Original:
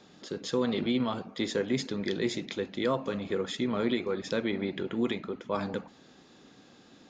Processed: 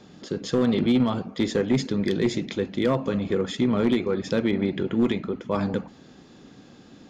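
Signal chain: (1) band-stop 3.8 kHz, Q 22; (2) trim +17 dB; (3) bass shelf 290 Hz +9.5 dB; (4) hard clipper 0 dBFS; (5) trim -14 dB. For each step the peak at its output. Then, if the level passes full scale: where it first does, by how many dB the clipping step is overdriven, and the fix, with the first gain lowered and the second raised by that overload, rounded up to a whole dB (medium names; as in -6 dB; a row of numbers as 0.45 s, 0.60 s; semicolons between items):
-16.5 dBFS, +0.5 dBFS, +5.0 dBFS, 0.0 dBFS, -14.0 dBFS; step 2, 5.0 dB; step 2 +12 dB, step 5 -9 dB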